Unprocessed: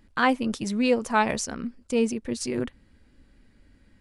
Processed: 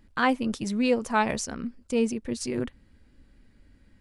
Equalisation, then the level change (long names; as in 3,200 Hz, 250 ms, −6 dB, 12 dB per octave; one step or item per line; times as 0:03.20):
low-shelf EQ 180 Hz +3 dB
−2.0 dB